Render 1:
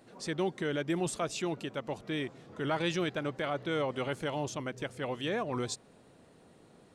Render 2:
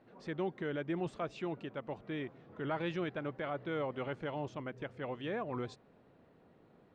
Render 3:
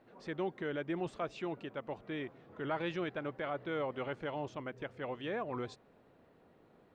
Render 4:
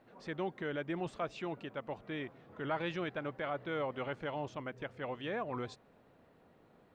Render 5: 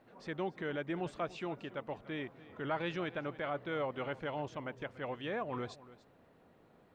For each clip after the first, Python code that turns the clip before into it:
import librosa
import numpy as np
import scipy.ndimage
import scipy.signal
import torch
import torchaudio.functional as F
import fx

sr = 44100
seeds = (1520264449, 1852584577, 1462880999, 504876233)

y1 = scipy.signal.sosfilt(scipy.signal.butter(2, 2400.0, 'lowpass', fs=sr, output='sos'), x)
y1 = F.gain(torch.from_numpy(y1), -4.5).numpy()
y2 = fx.peak_eq(y1, sr, hz=150.0, db=-4.0, octaves=1.8)
y2 = F.gain(torch.from_numpy(y2), 1.0).numpy()
y3 = fx.peak_eq(y2, sr, hz=370.0, db=-3.0, octaves=0.77)
y3 = F.gain(torch.from_numpy(y3), 1.0).numpy()
y4 = y3 + 10.0 ** (-18.0 / 20.0) * np.pad(y3, (int(290 * sr / 1000.0), 0))[:len(y3)]